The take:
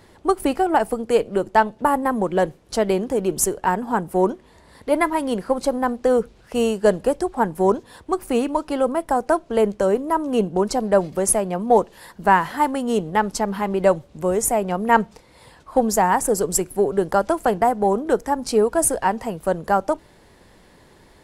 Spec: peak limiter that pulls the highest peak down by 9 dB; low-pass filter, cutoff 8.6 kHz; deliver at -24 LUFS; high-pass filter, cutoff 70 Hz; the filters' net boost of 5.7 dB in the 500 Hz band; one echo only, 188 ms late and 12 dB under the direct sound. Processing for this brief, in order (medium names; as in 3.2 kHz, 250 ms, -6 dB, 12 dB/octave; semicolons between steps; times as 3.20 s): high-pass 70 Hz; low-pass 8.6 kHz; peaking EQ 500 Hz +7 dB; peak limiter -7.5 dBFS; delay 188 ms -12 dB; trim -5 dB